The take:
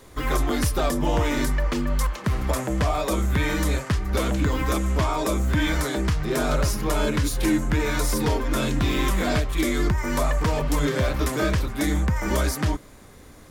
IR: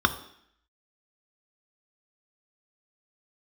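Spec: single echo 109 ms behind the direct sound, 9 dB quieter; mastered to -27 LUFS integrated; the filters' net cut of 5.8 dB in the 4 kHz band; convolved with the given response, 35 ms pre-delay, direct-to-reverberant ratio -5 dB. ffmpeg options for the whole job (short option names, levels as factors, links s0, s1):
-filter_complex "[0:a]equalizer=f=4000:t=o:g=-7.5,aecho=1:1:109:0.355,asplit=2[s0][s1];[1:a]atrim=start_sample=2205,adelay=35[s2];[s1][s2]afir=irnorm=-1:irlink=0,volume=0.316[s3];[s0][s3]amix=inputs=2:normalize=0,volume=0.316"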